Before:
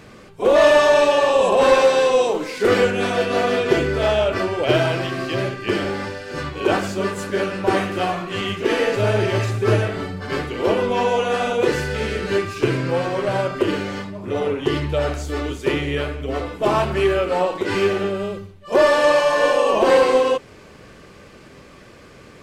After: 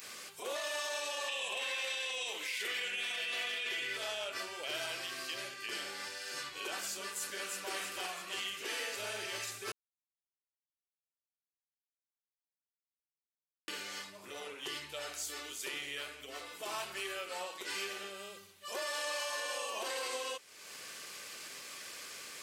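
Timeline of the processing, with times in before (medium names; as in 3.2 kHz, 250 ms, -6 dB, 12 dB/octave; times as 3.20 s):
1.28–3.97 s: high-order bell 2.5 kHz +10.5 dB 1.2 oct
7.08–7.73 s: echo throw 330 ms, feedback 50%, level -3.5 dB
9.72–13.68 s: mute
whole clip: upward compressor, threshold -18 dBFS; differentiator; peak limiter -26 dBFS; trim -2.5 dB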